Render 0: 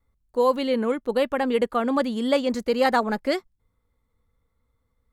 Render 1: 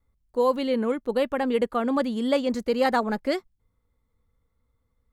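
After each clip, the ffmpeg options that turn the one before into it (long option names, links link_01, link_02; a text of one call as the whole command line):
ffmpeg -i in.wav -af "lowshelf=frequency=480:gain=3,volume=-3dB" out.wav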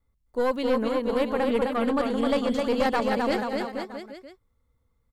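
ffmpeg -i in.wav -af "aecho=1:1:260|481|668.8|828.5|964.2:0.631|0.398|0.251|0.158|0.1,aeval=exprs='0.501*(cos(1*acos(clip(val(0)/0.501,-1,1)))-cos(1*PI/2))+0.112*(cos(4*acos(clip(val(0)/0.501,-1,1)))-cos(4*PI/2))+0.0794*(cos(5*acos(clip(val(0)/0.501,-1,1)))-cos(5*PI/2))':channel_layout=same,volume=-6.5dB" out.wav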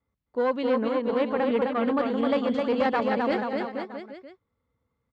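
ffmpeg -i in.wav -af "highpass=110,lowpass=3200" out.wav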